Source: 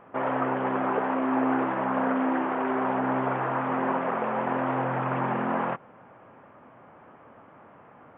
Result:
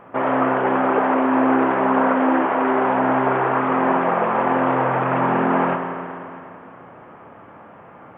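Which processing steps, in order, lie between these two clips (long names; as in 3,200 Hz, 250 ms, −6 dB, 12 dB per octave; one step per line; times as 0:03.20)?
spring reverb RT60 2.7 s, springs 33/57 ms, chirp 50 ms, DRR 3.5 dB
level +7 dB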